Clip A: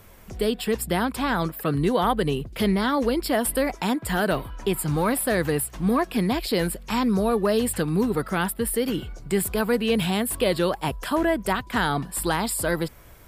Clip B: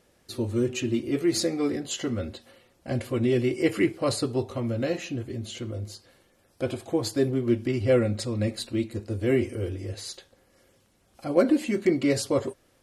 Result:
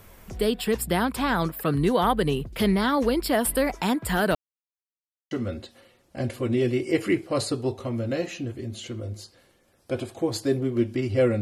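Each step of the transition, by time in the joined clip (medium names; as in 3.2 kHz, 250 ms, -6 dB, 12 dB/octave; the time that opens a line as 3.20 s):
clip A
4.35–5.31 s: mute
5.31 s: go over to clip B from 2.02 s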